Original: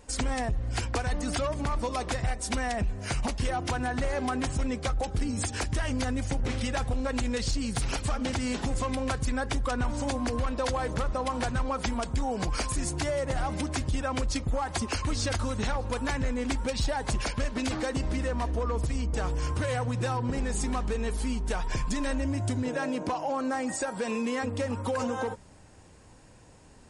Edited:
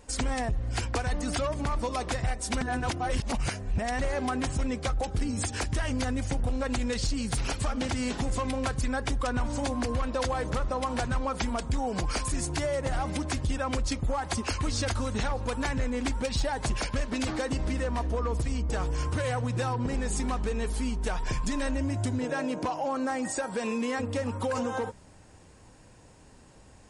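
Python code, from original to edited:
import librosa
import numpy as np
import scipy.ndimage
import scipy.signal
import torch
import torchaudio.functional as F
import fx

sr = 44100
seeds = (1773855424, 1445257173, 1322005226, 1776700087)

y = fx.edit(x, sr, fx.reverse_span(start_s=2.61, length_s=1.38),
    fx.cut(start_s=6.44, length_s=0.44), tone=tone)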